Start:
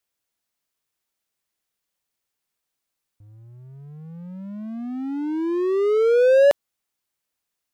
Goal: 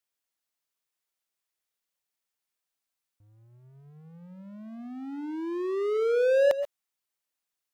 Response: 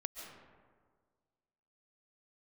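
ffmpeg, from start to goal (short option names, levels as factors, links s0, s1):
-filter_complex "[0:a]lowshelf=f=340:g=-7[s0];[1:a]atrim=start_sample=2205,atrim=end_sample=6174[s1];[s0][s1]afir=irnorm=-1:irlink=0,volume=0.794"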